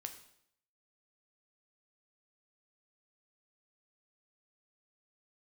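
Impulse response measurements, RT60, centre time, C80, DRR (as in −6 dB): 0.70 s, 13 ms, 13.0 dB, 6.0 dB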